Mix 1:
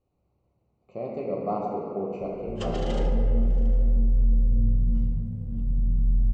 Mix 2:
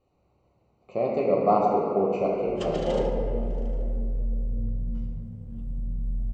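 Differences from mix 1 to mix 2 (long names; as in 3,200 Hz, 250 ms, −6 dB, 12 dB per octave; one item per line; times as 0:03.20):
speech +10.0 dB
master: add low-shelf EQ 350 Hz −7.5 dB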